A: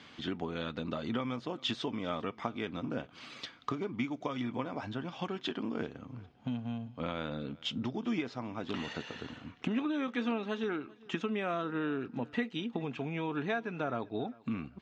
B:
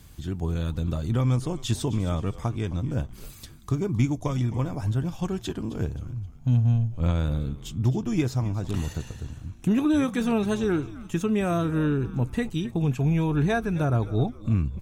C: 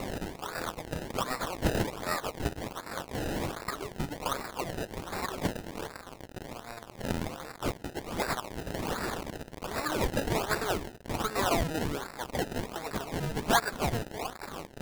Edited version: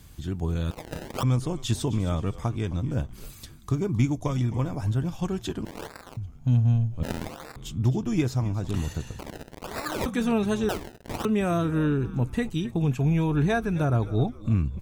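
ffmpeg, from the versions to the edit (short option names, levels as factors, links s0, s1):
-filter_complex "[2:a]asplit=5[s0][s1][s2][s3][s4];[1:a]asplit=6[s5][s6][s7][s8][s9][s10];[s5]atrim=end=0.712[s11];[s0]atrim=start=0.708:end=1.232[s12];[s6]atrim=start=1.228:end=5.652[s13];[s1]atrim=start=5.648:end=6.172[s14];[s7]atrim=start=6.168:end=7.032[s15];[s2]atrim=start=7.028:end=7.562[s16];[s8]atrim=start=7.558:end=9.192[s17];[s3]atrim=start=9.188:end=10.062[s18];[s9]atrim=start=10.058:end=10.692[s19];[s4]atrim=start=10.688:end=11.252[s20];[s10]atrim=start=11.248[s21];[s11][s12]acrossfade=d=0.004:c1=hsin:c2=hsin[s22];[s22][s13]acrossfade=d=0.004:c1=hsin:c2=hsin[s23];[s23][s14]acrossfade=d=0.004:c1=hsin:c2=hsin[s24];[s24][s15]acrossfade=d=0.004:c1=hsin:c2=hsin[s25];[s25][s16]acrossfade=d=0.004:c1=hsin:c2=hsin[s26];[s26][s17]acrossfade=d=0.004:c1=hsin:c2=hsin[s27];[s27][s18]acrossfade=d=0.004:c1=hsin:c2=hsin[s28];[s28][s19]acrossfade=d=0.004:c1=hsin:c2=hsin[s29];[s29][s20]acrossfade=d=0.004:c1=hsin:c2=hsin[s30];[s30][s21]acrossfade=d=0.004:c1=hsin:c2=hsin"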